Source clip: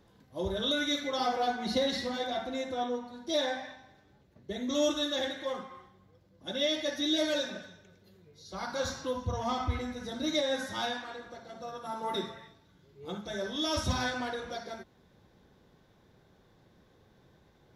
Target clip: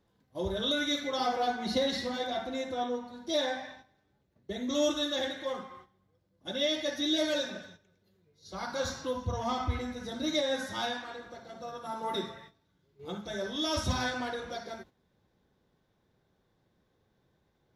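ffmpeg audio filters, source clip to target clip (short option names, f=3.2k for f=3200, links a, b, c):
-af "agate=range=-10dB:threshold=-52dB:ratio=16:detection=peak"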